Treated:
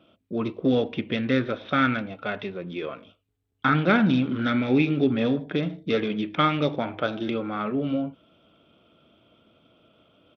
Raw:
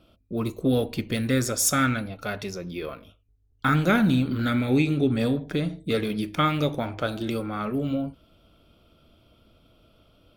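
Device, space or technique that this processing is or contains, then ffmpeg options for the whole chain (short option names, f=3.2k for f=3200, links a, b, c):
Bluetooth headset: -af "highpass=160,aresample=8000,aresample=44100,volume=1.5dB" -ar 32000 -c:a sbc -b:a 64k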